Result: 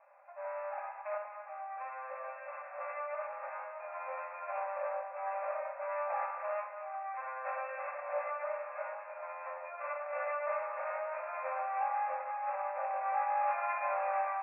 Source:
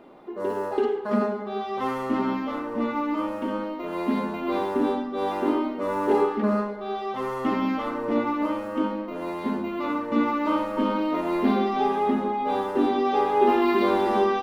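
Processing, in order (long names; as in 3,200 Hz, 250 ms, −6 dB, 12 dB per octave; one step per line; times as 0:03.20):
lower of the sound and its delayed copy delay 5 ms
brick-wall band-pass 510–2,700 Hz
0:01.17–0:02.78: downward compressor, threshold −32 dBFS, peak gain reduction 7.5 dB
delay that swaps between a low-pass and a high-pass 105 ms, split 970 Hz, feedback 64%, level −6.5 dB
level −8.5 dB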